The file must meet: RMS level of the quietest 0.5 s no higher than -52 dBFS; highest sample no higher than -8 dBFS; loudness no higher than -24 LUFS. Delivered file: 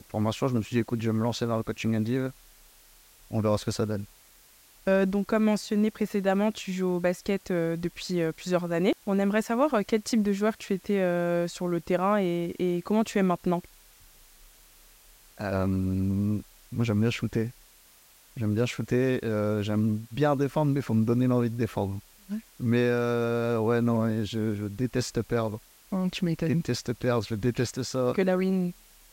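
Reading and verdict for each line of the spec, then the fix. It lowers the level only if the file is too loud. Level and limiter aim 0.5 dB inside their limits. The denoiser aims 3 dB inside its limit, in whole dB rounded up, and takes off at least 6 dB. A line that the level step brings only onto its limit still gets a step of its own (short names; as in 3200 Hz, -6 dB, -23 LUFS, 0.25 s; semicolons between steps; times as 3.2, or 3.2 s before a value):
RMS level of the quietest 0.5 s -57 dBFS: OK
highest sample -10.5 dBFS: OK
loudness -27.5 LUFS: OK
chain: none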